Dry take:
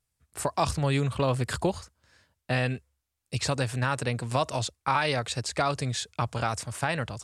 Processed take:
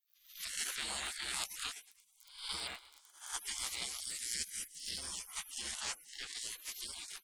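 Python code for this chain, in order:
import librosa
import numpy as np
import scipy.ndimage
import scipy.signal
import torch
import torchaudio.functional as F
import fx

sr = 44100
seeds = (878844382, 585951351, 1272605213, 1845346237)

p1 = fx.spec_swells(x, sr, rise_s=0.58)
p2 = fx.dmg_crackle(p1, sr, seeds[0], per_s=27.0, level_db=-41.0)
p3 = fx.small_body(p2, sr, hz=(240.0, 360.0, 1200.0, 1800.0), ring_ms=25, db=fx.line((1.75, 11.0), (2.51, 13.0)), at=(1.75, 2.51), fade=0.02)
p4 = fx.high_shelf(p3, sr, hz=5400.0, db=-6.5, at=(5.72, 6.35))
p5 = p4 + fx.echo_feedback(p4, sr, ms=110, feedback_pct=59, wet_db=-21.0, dry=0)
p6 = fx.spec_gate(p5, sr, threshold_db=-30, keep='weak')
p7 = fx.curve_eq(p6, sr, hz=(200.0, 560.0, 930.0, 1900.0, 2900.0, 6100.0), db=(0, -6, -24, -2, -4, 3), at=(4.0, 4.98))
y = p7 * librosa.db_to_amplitude(4.5)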